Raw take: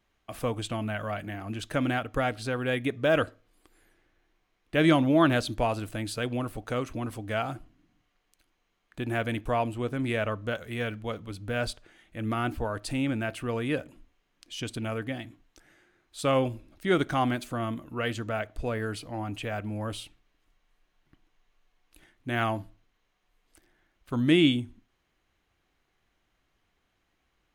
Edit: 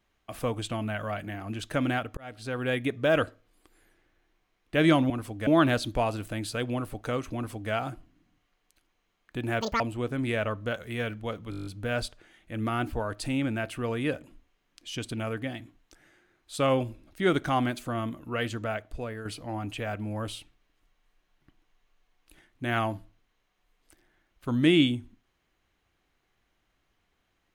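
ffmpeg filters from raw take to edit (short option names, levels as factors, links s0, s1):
-filter_complex "[0:a]asplit=15[s0][s1][s2][s3][s4][s5][s6][s7][s8][s9][s10][s11][s12][s13][s14];[s0]atrim=end=2.17,asetpts=PTS-STARTPTS,afade=t=out:st=2.166:d=0.004:c=hsin[s15];[s1]atrim=start=2.17:end=5.102,asetpts=PTS-STARTPTS,afade=t=in:d=0.47[s16];[s2]atrim=start=6.978:end=7.352[s17];[s3]atrim=start=5.098:end=9.244[s18];[s4]atrim=start=9.24:end=9.61,asetpts=PTS-STARTPTS,asetrate=85113,aresample=44100,atrim=end_sample=8454,asetpts=PTS-STARTPTS[s19];[s5]atrim=start=9.606:end=11.332[s20];[s6]atrim=start=11.308:end=11.332[s21];[s7]atrim=start=11.308:end=11.332[s22];[s8]atrim=start=11.308:end=11.332[s23];[s9]atrim=start=11.308:end=11.332[s24];[s10]atrim=start=11.308:end=11.332[s25];[s11]atrim=start=11.308:end=11.332[s26];[s12]atrim=start=11.308:end=11.332[s27];[s13]atrim=start=11.308:end=18.9,asetpts=PTS-STARTPTS,afade=t=out:st=6.972:d=0.62:silence=0.375837[s28];[s14]atrim=start=18.9,asetpts=PTS-STARTPTS,afade=t=in:d=0.004:c=hsin:silence=0.375837[s29];[s15][s16]concat=n=2:v=0:a=1[s30];[s30][s17]acrossfade=d=0.004:c1=hsin:c2=hsin[s31];[s31][s18]acrossfade=d=0.004:c1=hsin:c2=hsin[s32];[s32][s19]acrossfade=d=0.004:c1=hsin:c2=hsin[s33];[s33][s20]acrossfade=d=0.004:c1=hsin:c2=hsin[s34];[s34][s21]acrossfade=d=0.004:c1=hsin:c2=hsin[s35];[s35][s22]acrossfade=d=0.004:c1=hsin:c2=hsin[s36];[s36][s23]acrossfade=d=0.004:c1=hsin:c2=hsin[s37];[s37][s24]acrossfade=d=0.004:c1=hsin:c2=hsin[s38];[s38][s25]acrossfade=d=0.004:c1=hsin:c2=hsin[s39];[s39][s26]acrossfade=d=0.004:c1=hsin:c2=hsin[s40];[s40][s27]acrossfade=d=0.004:c1=hsin:c2=hsin[s41];[s28][s29]concat=n=2:v=0:a=1[s42];[s41][s42]acrossfade=d=0.004:c1=hsin:c2=hsin"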